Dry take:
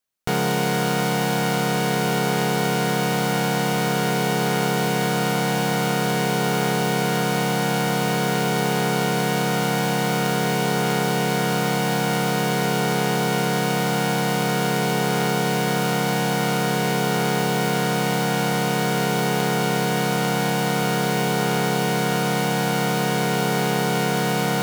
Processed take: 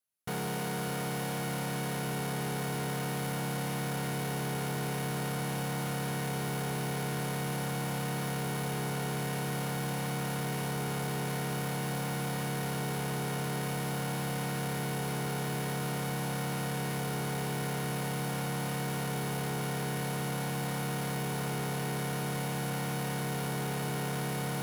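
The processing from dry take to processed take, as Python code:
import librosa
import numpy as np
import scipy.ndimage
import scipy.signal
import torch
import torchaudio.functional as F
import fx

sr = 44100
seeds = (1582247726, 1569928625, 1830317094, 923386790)

p1 = fx.peak_eq(x, sr, hz=11000.0, db=11.0, octaves=0.33)
p2 = p1 + fx.echo_filtered(p1, sr, ms=599, feedback_pct=79, hz=2000.0, wet_db=-14.0, dry=0)
p3 = 10.0 ** (-23.5 / 20.0) * np.tanh(p2 / 10.0 ** (-23.5 / 20.0))
p4 = scipy.signal.sosfilt(scipy.signal.butter(2, 64.0, 'highpass', fs=sr, output='sos'), p3)
p5 = fx.low_shelf(p4, sr, hz=120.0, db=6.0)
y = p5 * librosa.db_to_amplitude(-8.5)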